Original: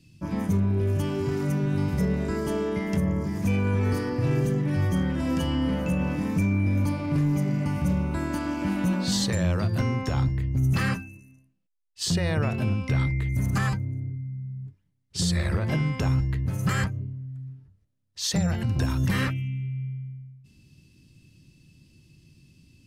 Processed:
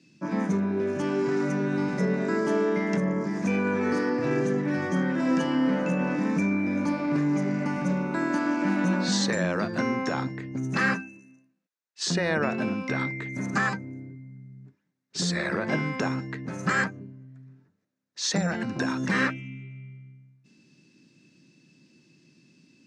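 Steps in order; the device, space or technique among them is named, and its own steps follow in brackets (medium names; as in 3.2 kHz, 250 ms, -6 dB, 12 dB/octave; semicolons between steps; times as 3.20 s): television speaker (cabinet simulation 200–6700 Hz, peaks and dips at 1.6 kHz +5 dB, 3.1 kHz -8 dB, 4.7 kHz -4 dB); trim +3.5 dB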